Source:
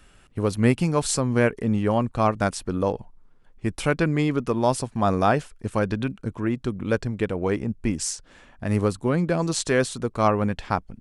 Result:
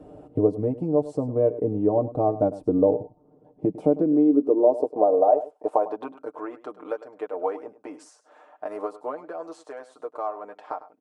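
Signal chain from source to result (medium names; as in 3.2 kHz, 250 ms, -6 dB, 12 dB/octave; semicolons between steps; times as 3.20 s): high-pass sweep 81 Hz -> 1.4 kHz, 2.86–6.36 s; compression 3:1, threshold -33 dBFS, peak gain reduction 16.5 dB; comb 6.6 ms, depth 75%; on a send: delay 102 ms -16 dB; on the sum: gain riding within 5 dB 0.5 s; FFT filter 170 Hz 0 dB, 280 Hz +13 dB, 680 Hz +14 dB, 1.6 kHz -19 dB, 6.5 kHz -22 dB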